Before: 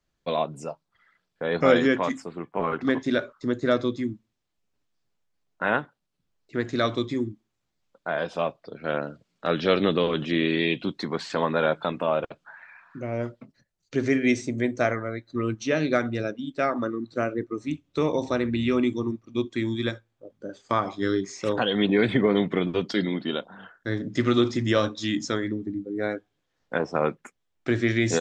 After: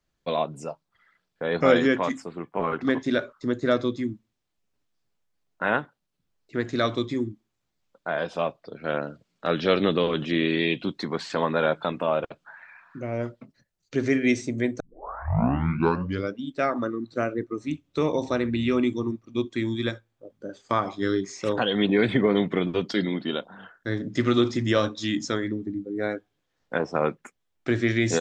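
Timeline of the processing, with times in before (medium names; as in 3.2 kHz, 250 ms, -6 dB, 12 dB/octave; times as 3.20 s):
14.80 s: tape start 1.60 s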